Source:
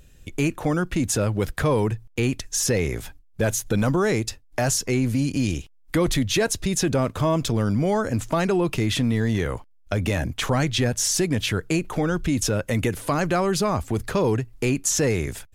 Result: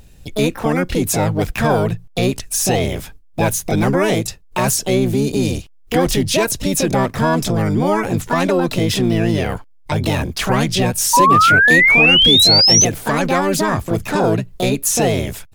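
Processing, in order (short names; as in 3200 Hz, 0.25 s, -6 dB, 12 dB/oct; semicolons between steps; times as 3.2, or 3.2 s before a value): harmoniser +7 st -1 dB; painted sound rise, 11.13–12.85, 930–6300 Hz -14 dBFS; gain +3 dB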